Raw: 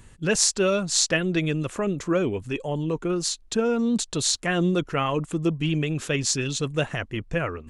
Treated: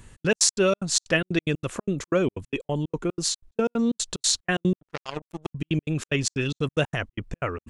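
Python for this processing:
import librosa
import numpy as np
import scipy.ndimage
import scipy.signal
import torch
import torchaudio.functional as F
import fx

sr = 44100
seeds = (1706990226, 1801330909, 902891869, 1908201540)

y = fx.step_gate(x, sr, bpm=184, pattern='xx.x.x.xx.xx.', floor_db=-60.0, edge_ms=4.5)
y = fx.power_curve(y, sr, exponent=3.0, at=(4.75, 5.53))
y = y * 10.0 ** (1.0 / 20.0)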